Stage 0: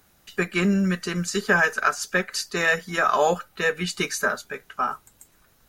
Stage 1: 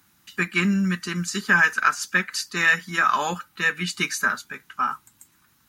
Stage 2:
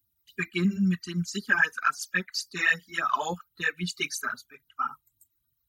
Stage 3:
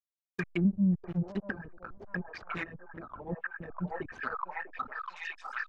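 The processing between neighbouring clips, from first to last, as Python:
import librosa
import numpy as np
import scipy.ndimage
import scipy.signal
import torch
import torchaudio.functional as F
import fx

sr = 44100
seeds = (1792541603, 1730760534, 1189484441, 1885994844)

y1 = fx.dynamic_eq(x, sr, hz=2200.0, q=1.0, threshold_db=-31.0, ratio=4.0, max_db=4)
y1 = scipy.signal.sosfilt(scipy.signal.butter(2, 95.0, 'highpass', fs=sr, output='sos'), y1)
y1 = fx.band_shelf(y1, sr, hz=540.0, db=-12.0, octaves=1.1)
y2 = fx.bin_expand(y1, sr, power=1.5)
y2 = fx.phaser_stages(y2, sr, stages=12, low_hz=160.0, high_hz=2800.0, hz=3.7, feedback_pct=25)
y3 = fx.backlash(y2, sr, play_db=-27.0)
y3 = fx.echo_stepped(y3, sr, ms=647, hz=680.0, octaves=0.7, feedback_pct=70, wet_db=-1.0)
y3 = fx.env_lowpass_down(y3, sr, base_hz=320.0, full_db=-25.0)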